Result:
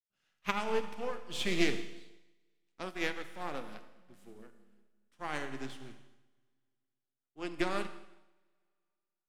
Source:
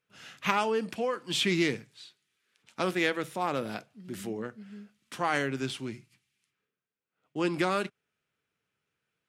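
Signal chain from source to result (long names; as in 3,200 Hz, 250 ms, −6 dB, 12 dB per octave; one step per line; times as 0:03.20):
gain on one half-wave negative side −7 dB
four-comb reverb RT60 2.3 s, combs from 26 ms, DRR 5.5 dB
expander for the loud parts 2.5 to 1, over −41 dBFS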